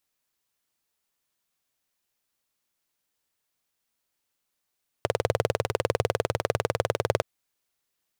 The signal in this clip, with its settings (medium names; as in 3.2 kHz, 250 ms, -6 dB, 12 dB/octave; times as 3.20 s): single-cylinder engine model, steady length 2.17 s, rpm 2400, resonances 110/470 Hz